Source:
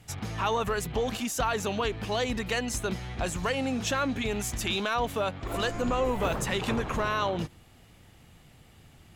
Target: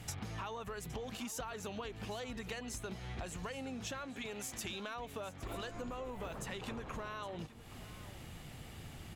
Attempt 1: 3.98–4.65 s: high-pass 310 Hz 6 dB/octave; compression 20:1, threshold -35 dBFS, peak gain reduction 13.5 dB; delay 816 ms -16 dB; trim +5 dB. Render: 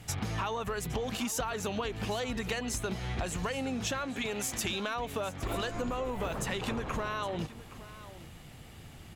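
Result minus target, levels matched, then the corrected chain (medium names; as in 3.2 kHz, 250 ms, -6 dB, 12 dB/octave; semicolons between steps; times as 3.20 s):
compression: peak gain reduction -9 dB
3.98–4.65 s: high-pass 310 Hz 6 dB/octave; compression 20:1, threshold -44.5 dBFS, peak gain reduction 22.5 dB; delay 816 ms -16 dB; trim +5 dB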